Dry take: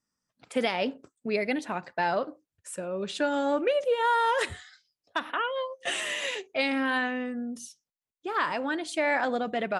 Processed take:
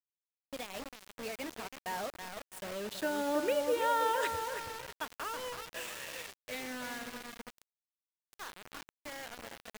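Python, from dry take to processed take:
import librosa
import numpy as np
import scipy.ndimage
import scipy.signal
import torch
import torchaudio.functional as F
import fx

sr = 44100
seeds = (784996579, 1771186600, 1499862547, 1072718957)

p1 = fx.doppler_pass(x, sr, speed_mps=22, closest_m=23.0, pass_at_s=3.66)
p2 = p1 + fx.echo_wet_lowpass(p1, sr, ms=326, feedback_pct=42, hz=2600.0, wet_db=-6.5, dry=0)
p3 = fx.quant_dither(p2, sr, seeds[0], bits=6, dither='none')
y = F.gain(torch.from_numpy(p3), -6.0).numpy()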